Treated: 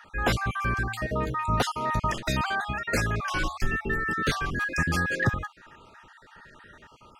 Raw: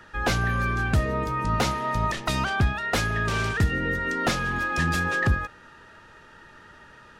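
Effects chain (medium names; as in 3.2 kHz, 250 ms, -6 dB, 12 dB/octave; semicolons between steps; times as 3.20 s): random holes in the spectrogram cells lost 42%; 0.80–1.47 s: de-hum 112.5 Hz, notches 8; 3.21–4.53 s: frequency shift -79 Hz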